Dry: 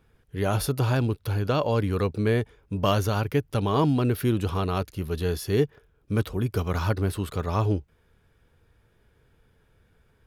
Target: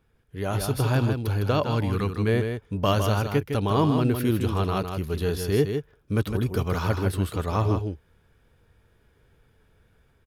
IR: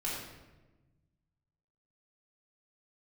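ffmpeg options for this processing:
-filter_complex "[0:a]aecho=1:1:158:0.473,dynaudnorm=f=420:g=3:m=1.78,asettb=1/sr,asplit=3[s0][s1][s2];[s0]atrim=end=1.634[s3];[s1]atrim=start=1.63:end=2.28,asetpts=PTS-STARTPTS,afade=t=in:d=0.004:c=qsin,afade=t=out:st=0.646:d=0.004:c=qsin,equalizer=f=540:t=o:w=0.64:g=-9.5[s4];[s2]atrim=start=2.276[s5];[s3][s4]acrossfade=d=0.004:c1=hsin:c2=qsin[s6];[s6][s5]acrossfade=d=0.004:c1=qsin:c2=hsin,volume=0.596"

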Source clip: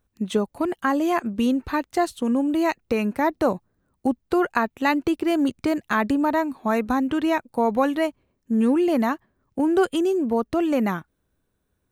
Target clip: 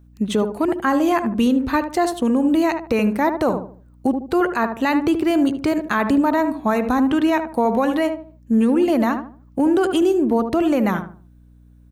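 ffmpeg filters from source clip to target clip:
-filter_complex "[0:a]asplit=2[s0][s1];[s1]adelay=75,lowpass=f=1100:p=1,volume=0.398,asplit=2[s2][s3];[s3]adelay=75,lowpass=f=1100:p=1,volume=0.35,asplit=2[s4][s5];[s5]adelay=75,lowpass=f=1100:p=1,volume=0.35,asplit=2[s6][s7];[s7]adelay=75,lowpass=f=1100:p=1,volume=0.35[s8];[s0][s2][s4][s6][s8]amix=inputs=5:normalize=0,aeval=exprs='val(0)+0.00251*(sin(2*PI*60*n/s)+sin(2*PI*2*60*n/s)/2+sin(2*PI*3*60*n/s)/3+sin(2*PI*4*60*n/s)/4+sin(2*PI*5*60*n/s)/5)':c=same,alimiter=level_in=4.73:limit=0.891:release=50:level=0:latency=1,volume=0.376"

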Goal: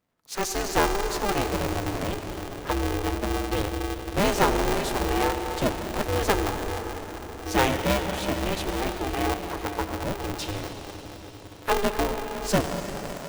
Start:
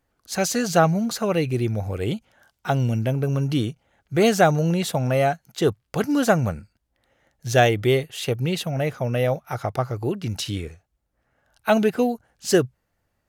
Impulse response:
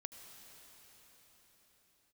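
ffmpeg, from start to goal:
-filter_complex "[1:a]atrim=start_sample=2205[s0];[0:a][s0]afir=irnorm=-1:irlink=0,aeval=exprs='val(0)*sgn(sin(2*PI*200*n/s))':c=same"

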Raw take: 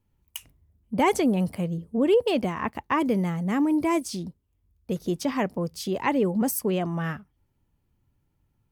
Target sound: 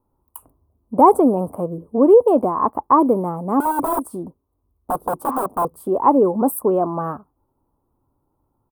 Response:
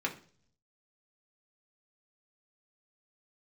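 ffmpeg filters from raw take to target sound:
-filter_complex "[0:a]asettb=1/sr,asplit=3[s0][s1][s2];[s0]atrim=end=3.604[s3];[s1]atrim=start=3.6:end=5.65,asetpts=PTS-STARTPTS,afade=t=in:d=0.004:c=qsin,afade=t=out:st=2.046:d=0.004:c=qsin,aeval=exprs='(mod(14.1*val(0)+1,2)-1)/14.1':c=same[s4];[s2]atrim=start=5.646[s5];[s3][s4]acrossfade=d=0.004:c1=hsin:c2=qsin[s6];[s6][s5]acrossfade=d=0.004:c1=qsin:c2=hsin,firequalizer=gain_entry='entry(190,0);entry(270,10);entry(1100,15);entry(1900,-20);entry(6100,-25);entry(8800,2);entry(16000,4)':delay=0.05:min_phase=1,volume=0.841"

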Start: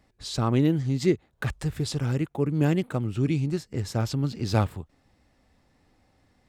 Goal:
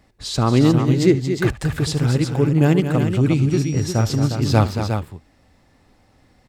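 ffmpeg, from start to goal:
-filter_complex "[0:a]asettb=1/sr,asplit=3[s0][s1][s2];[s0]atrim=end=3.514[s3];[s1]atrim=start=3.51:end=4.02,asetpts=PTS-STARTPTS,afade=t=in:d=0.004:c=qsin,afade=t=out:st=0.506:d=0.004:c=qsin,aeval=exprs='val(0)+0.00447*sin(2*PI*5700*n/s)':c=same[s4];[s2]atrim=start=4.016[s5];[s3][s4]acrossfade=d=0.004:c1=hsin:c2=qsin[s6];[s6][s5]acrossfade=d=0.004:c1=qsin:c2=hsin,aecho=1:1:73|227|357:0.133|0.376|0.447,volume=2.24"

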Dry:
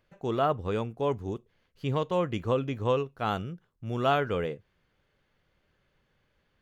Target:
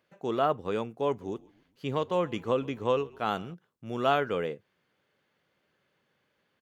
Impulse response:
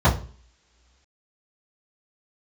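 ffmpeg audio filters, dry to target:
-filter_complex "[0:a]highpass=180,asplit=3[s0][s1][s2];[s0]afade=t=out:st=1.2:d=0.02[s3];[s1]asplit=4[s4][s5][s6][s7];[s5]adelay=132,afreqshift=-40,volume=0.0668[s8];[s6]adelay=264,afreqshift=-80,volume=0.0302[s9];[s7]adelay=396,afreqshift=-120,volume=0.0135[s10];[s4][s8][s9][s10]amix=inputs=4:normalize=0,afade=t=in:st=1.2:d=0.02,afade=t=out:st=3.53:d=0.02[s11];[s2]afade=t=in:st=3.53:d=0.02[s12];[s3][s11][s12]amix=inputs=3:normalize=0"

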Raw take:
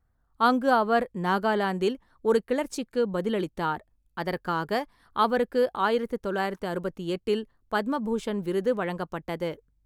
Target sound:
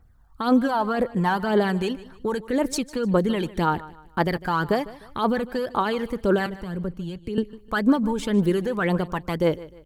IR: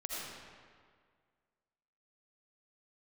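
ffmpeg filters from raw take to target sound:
-filter_complex "[0:a]asplit=2[s0][s1];[s1]acompressor=threshold=0.0251:ratio=6,volume=1.06[s2];[s0][s2]amix=inputs=2:normalize=0,alimiter=limit=0.126:level=0:latency=1:release=31,asettb=1/sr,asplit=3[s3][s4][s5];[s3]atrim=end=6.464[s6];[s4]atrim=start=6.46:end=7.38,asetpts=PTS-STARTPTS,afade=t=in:d=0.004:c=qsin,afade=t=out:st=0.916:d=0.004:c=qsin,acrossover=split=190[s7][s8];[s8]acompressor=threshold=0.00562:ratio=2.5[s9];[s7][s9]amix=inputs=2:normalize=0[s10];[s5]atrim=start=7.376[s11];[s6][s10]acrossfade=d=0.004:c1=hsin:c2=qsin[s12];[s12][s11]acrossfade=d=0.004:c1=qsin:c2=hsin,aphaser=in_gain=1:out_gain=1:delay=1.3:decay=0.53:speed=1.9:type=triangular,asplit=2[s13][s14];[s14]aecho=0:1:152|304|456:0.119|0.0416|0.0146[s15];[s13][s15]amix=inputs=2:normalize=0,volume=1.33"

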